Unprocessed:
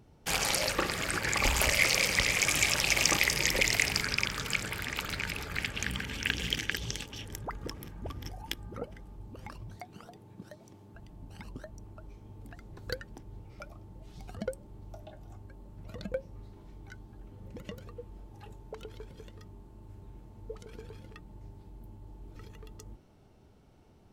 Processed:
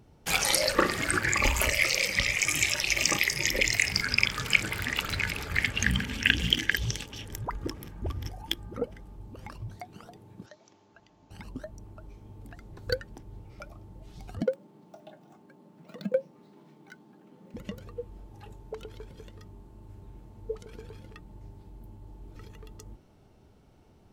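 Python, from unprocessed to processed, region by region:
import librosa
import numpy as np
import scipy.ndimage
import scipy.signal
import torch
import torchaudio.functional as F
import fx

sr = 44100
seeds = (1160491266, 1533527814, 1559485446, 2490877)

y = fx.chain(x, sr, fx.highpass(hz=720.0, slope=6),
    fx.resample_bad(factor=3, down='none', up='filtered'), at=(10.46, 11.31))
y = fx.chain(y, sr, fx.median_filter(points=5),
    fx.cheby1_highpass(hz=150.0, order=5), at=(14.42, 17.54))
y = fx.noise_reduce_blind(y, sr, reduce_db=8)
y = fx.rider(y, sr, range_db=5, speed_s=0.5)
y = y * 10.0 ** (5.5 / 20.0)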